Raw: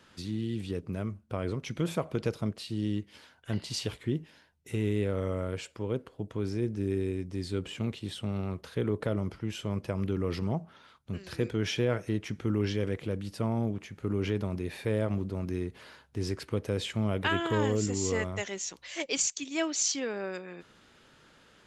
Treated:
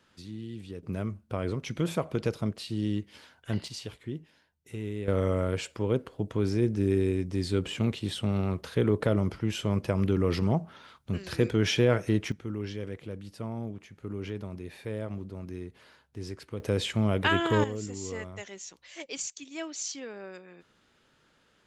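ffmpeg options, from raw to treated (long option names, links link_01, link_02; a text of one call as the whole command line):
ffmpeg -i in.wav -af "asetnsamples=nb_out_samples=441:pad=0,asendcmd='0.83 volume volume 1.5dB;3.68 volume volume -6dB;5.08 volume volume 5dB;12.32 volume volume -6dB;16.6 volume volume 3.5dB;17.64 volume volume -7dB',volume=-6.5dB" out.wav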